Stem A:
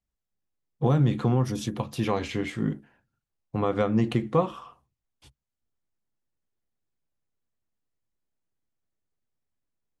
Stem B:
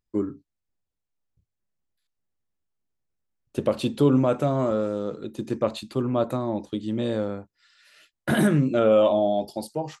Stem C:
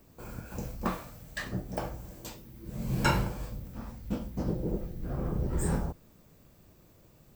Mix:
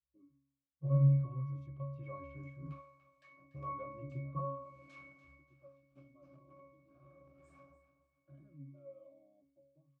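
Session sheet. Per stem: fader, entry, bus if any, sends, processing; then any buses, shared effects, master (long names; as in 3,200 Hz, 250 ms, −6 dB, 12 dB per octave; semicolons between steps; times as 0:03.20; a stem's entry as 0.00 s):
+0.5 dB, 0.00 s, no send, no echo send, comb filter 1.9 ms, depth 62%
−18.5 dB, 0.00 s, no send, no echo send, notch filter 790 Hz, Q 21
+2.0 dB, 1.85 s, no send, echo send −13 dB, high-pass filter 110 Hz 6 dB per octave; wave folding −28 dBFS; meter weighting curve ITU-R 468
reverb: not used
echo: repeating echo 290 ms, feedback 30%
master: resonances in every octave C#, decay 0.68 s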